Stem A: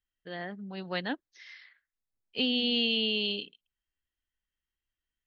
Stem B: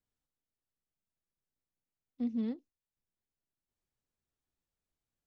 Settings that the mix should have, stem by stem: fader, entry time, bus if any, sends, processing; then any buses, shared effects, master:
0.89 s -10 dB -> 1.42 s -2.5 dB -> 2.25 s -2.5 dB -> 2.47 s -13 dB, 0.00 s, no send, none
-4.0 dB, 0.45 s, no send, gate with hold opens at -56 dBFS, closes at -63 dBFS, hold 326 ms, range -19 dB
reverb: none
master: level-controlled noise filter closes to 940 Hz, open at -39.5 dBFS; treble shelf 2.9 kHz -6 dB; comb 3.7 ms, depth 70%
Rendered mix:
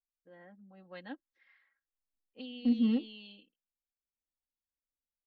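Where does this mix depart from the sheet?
stem A -10.0 dB -> -16.5 dB; stem B -4.0 dB -> +3.0 dB

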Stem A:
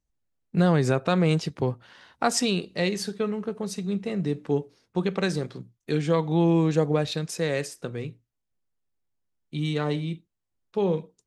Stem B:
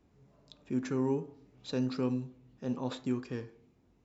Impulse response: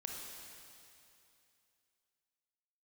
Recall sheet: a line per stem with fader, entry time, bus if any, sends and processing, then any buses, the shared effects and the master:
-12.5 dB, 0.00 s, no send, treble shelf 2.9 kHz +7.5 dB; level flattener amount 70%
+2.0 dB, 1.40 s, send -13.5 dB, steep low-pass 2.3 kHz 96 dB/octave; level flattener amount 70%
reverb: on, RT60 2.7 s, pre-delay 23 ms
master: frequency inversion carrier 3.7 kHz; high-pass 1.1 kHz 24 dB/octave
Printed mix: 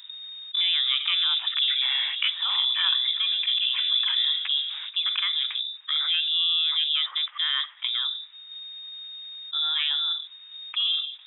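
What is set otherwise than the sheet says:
stem A -12.5 dB -> -5.5 dB; stem B: entry 1.40 s -> 0.85 s

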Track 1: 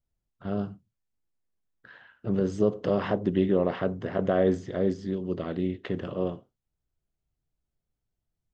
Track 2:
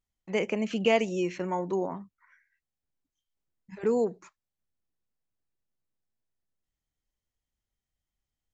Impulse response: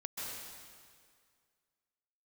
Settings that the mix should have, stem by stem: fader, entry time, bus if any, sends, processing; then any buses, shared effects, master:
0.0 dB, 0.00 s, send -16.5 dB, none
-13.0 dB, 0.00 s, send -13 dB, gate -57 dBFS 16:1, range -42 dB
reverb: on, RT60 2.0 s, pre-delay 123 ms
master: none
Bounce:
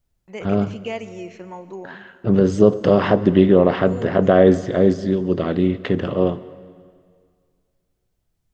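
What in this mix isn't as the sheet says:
stem 1 0.0 dB -> +10.0 dB; stem 2 -13.0 dB -> -6.5 dB

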